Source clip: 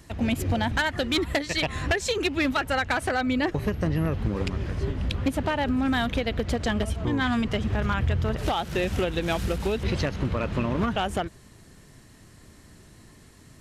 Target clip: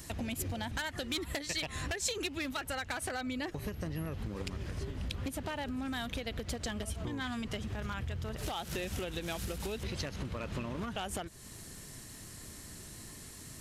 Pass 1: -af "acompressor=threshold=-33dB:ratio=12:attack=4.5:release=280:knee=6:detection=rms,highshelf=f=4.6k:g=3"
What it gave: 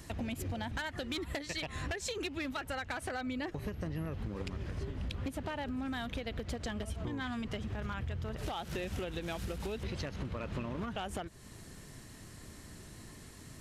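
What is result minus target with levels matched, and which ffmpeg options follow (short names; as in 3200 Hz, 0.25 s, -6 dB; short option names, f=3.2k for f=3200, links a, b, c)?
8000 Hz band -7.0 dB
-af "acompressor=threshold=-33dB:ratio=12:attack=4.5:release=280:knee=6:detection=rms,highshelf=f=4.6k:g=13"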